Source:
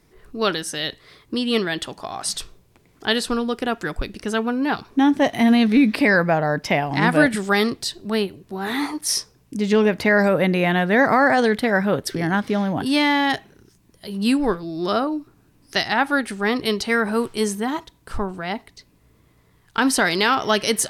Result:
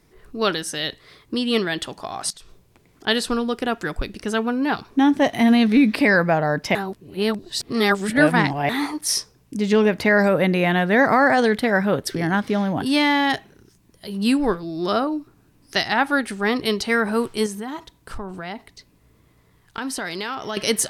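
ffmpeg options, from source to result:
-filter_complex "[0:a]asettb=1/sr,asplit=3[a][b][c];[a]atrim=end=2.304[d];[b]atrim=start=2.3:end=3.07,asetpts=PTS-STARTPTS,afade=t=in:d=0.004:c=qsin,afade=t=out:st=0.766:d=0.004:c=qsin,acompressor=threshold=-39dB:ratio=16:attack=3.2:release=140:knee=1:detection=peak[e];[c]atrim=start=3.066[f];[d][e]acrossfade=d=0.004:c1=hsin:c2=qsin[g];[g][f]acrossfade=d=0.004:c1=qsin:c2=hsin,asettb=1/sr,asplit=3[h][i][j];[h]atrim=end=17.464[k];[i]atrim=start=17.46:end=20.57,asetpts=PTS-STARTPTS,afade=t=in:d=0.004:c=qsin,afade=t=out:st=3.106:d=0.004:c=qsin,acompressor=threshold=-29dB:ratio=2.5:attack=3.2:release=140:knee=1:detection=peak[l];[j]atrim=start=20.566[m];[k][l]acrossfade=d=0.004:c1=hsin:c2=qsin[n];[n][m]acrossfade=d=0.004:c1=qsin:c2=hsin,asplit=3[o][p][q];[o]atrim=end=6.752[r];[p]atrim=start=6.748:end=8.692,asetpts=PTS-STARTPTS,areverse[s];[q]atrim=start=8.688[t];[r][s]acrossfade=d=0.004:c1=hsin:c2=hsin[u];[u][t]acrossfade=d=0.004:c1=hsin:c2=hsin"

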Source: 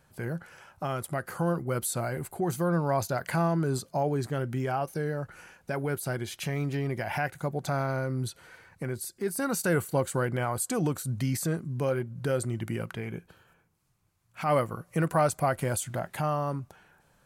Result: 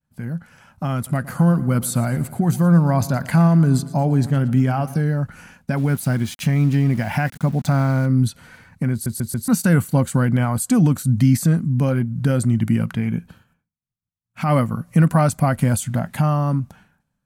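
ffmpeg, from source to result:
-filter_complex "[0:a]asettb=1/sr,asplit=3[a][b][c];[a]atrim=end=0.954[d];[b]atrim=start=0.95:end=5.01,asetpts=PTS-STARTPTS,afade=t=in:d=0.004:c=qsin,afade=t=out:st=4.056:d=0.004:c=qsin,aecho=1:1:115|230|345|460|575:0.133|0.076|0.0433|0.0247|0.0141,atrim=end_sample=179046[e];[c]atrim=start=5.006[f];[d][e]acrossfade=d=0.004:c1=hsin:c2=qsin[g];[g][f]acrossfade=d=0.004:c1=qsin:c2=hsin,asettb=1/sr,asplit=3[h][i][j];[h]atrim=end=5.774[k];[i]atrim=start=5.77:end=8.06,asetpts=PTS-STARTPTS,afade=t=in:d=0.004:c=qsin,afade=t=out:st=2.286:d=0.004:c=qsin,aeval=exprs='val(0)*gte(abs(val(0)),0.00631)':c=same[l];[j]atrim=start=8.056[m];[k][l]acrossfade=d=0.004:c1=hsin:c2=qsin[n];[n][m]acrossfade=d=0.004:c1=qsin:c2=hsin,asplit=5[o][p][q][r][s];[o]atrim=end=9.062[t];[p]atrim=start=8.918:end=9.062[u];[q]atrim=start=8.918:end=9.062[v];[r]atrim=start=8.918:end=9.062[w];[s]atrim=start=9.478[x];[t][u]acrossfade=d=0.004:c1=hsin:c2=hsin[y];[y][v]acrossfade=d=0.004:c1=hsin:c2=hsin[z];[z][w]acrossfade=d=0.004:c1=hsin:c2=hsin[aa];[aa][x]acrossfade=d=0.004:c1=hsin:c2=hsin,agate=range=-33dB:threshold=-53dB:ratio=3:detection=peak,lowshelf=f=300:t=q:w=3:g=6.5,dynaudnorm=f=290:g=5:m=8dB,volume=-1.5dB"

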